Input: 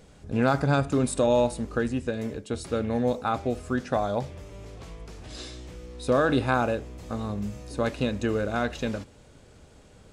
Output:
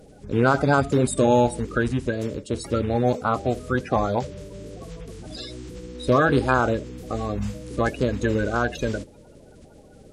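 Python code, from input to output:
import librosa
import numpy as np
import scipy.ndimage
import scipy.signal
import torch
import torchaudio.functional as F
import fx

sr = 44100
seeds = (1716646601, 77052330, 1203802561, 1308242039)

y = fx.spec_quant(x, sr, step_db=30)
y = y * 10.0 ** (4.5 / 20.0)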